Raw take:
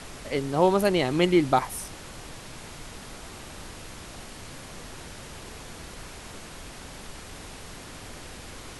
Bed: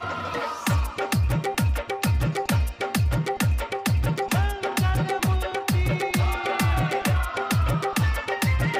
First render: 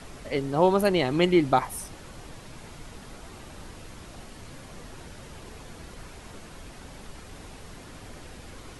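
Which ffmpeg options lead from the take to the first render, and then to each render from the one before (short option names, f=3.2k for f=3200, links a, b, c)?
-af "afftdn=nr=6:nf=-43"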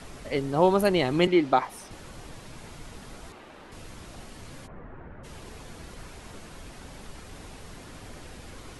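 -filter_complex "[0:a]asettb=1/sr,asplit=3[a][b][c];[a]atrim=end=1.274[d];[b]atrim=start=1.27:end=1.91,asetpts=PTS-STARTPTS,afade=t=in:d=0.004:c=qsin,afade=t=out:st=0.636:d=0.004:c=qsin,acrossover=split=200 6000:gain=0.224 1 0.251[e][f][g];[e][f][g]amix=inputs=3:normalize=0[h];[c]atrim=start=1.906[i];[d][h]acrossfade=d=0.004:c1=hsin:c2=qsin[j];[j][i]acrossfade=d=0.004:c1=qsin:c2=hsin,asettb=1/sr,asplit=3[k][l][m];[k]atrim=end=3.324[n];[l]atrim=start=3.32:end=3.72,asetpts=PTS-STARTPTS,afade=t=in:d=0.004:c=qsin,afade=t=out:st=0.396:d=0.004:c=qsin,acrossover=split=230 3600:gain=0.2 1 0.224[o][p][q];[o][p][q]amix=inputs=3:normalize=0[r];[m]atrim=start=3.716[s];[n][r]acrossfade=d=0.004:c1=hsin:c2=qsin[t];[t][s]acrossfade=d=0.004:c1=qsin:c2=hsin,asplit=3[u][v][w];[u]afade=t=out:st=4.66:d=0.02[x];[v]lowpass=f=1.8k:w=0.5412,lowpass=f=1.8k:w=1.3066,afade=t=in:st=4.66:d=0.02,afade=t=out:st=5.23:d=0.02[y];[w]afade=t=in:st=5.23:d=0.02[z];[x][y][z]amix=inputs=3:normalize=0"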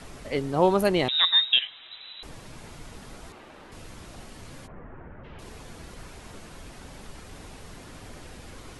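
-filter_complex "[0:a]asettb=1/sr,asplit=3[a][b][c];[a]atrim=end=1.084[d];[b]atrim=start=1.08:end=2.23,asetpts=PTS-STARTPTS,afade=t=in:d=0.004:c=qsin,afade=t=out:st=1.146:d=0.004:c=qsin,lowpass=f=3.4k:t=q:w=0.5098,lowpass=f=3.4k:t=q:w=0.6013,lowpass=f=3.4k:t=q:w=0.9,lowpass=f=3.4k:t=q:w=2.563,afreqshift=-4000[e];[c]atrim=start=2.226[f];[d][e]acrossfade=d=0.004:c1=hsin:c2=qsin[g];[g][f]acrossfade=d=0.004:c1=qsin:c2=hsin,asettb=1/sr,asplit=3[h][i][j];[h]atrim=end=4.724[k];[i]atrim=start=4.72:end=5.39,asetpts=PTS-STARTPTS,afade=t=in:d=0.004:c=qsin,afade=t=out:st=0.666:d=0.004:c=qsin,lowpass=f=3.1k:w=0.5412,lowpass=f=3.1k:w=1.3066[l];[j]atrim=start=5.386[m];[k][l]acrossfade=d=0.004:c1=hsin:c2=qsin[n];[n][m]acrossfade=d=0.004:c1=qsin:c2=hsin"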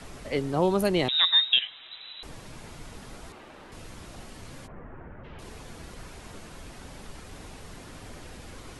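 -filter_complex "[0:a]acrossover=split=390|3000[a][b][c];[b]acompressor=threshold=-25dB:ratio=6[d];[a][d][c]amix=inputs=3:normalize=0"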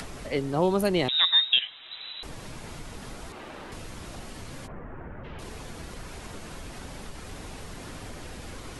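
-af "acompressor=mode=upward:threshold=-33dB:ratio=2.5"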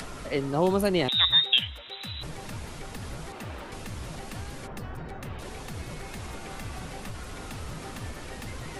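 -filter_complex "[1:a]volume=-18.5dB[a];[0:a][a]amix=inputs=2:normalize=0"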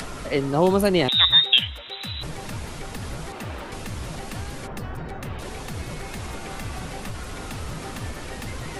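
-af "volume=5dB"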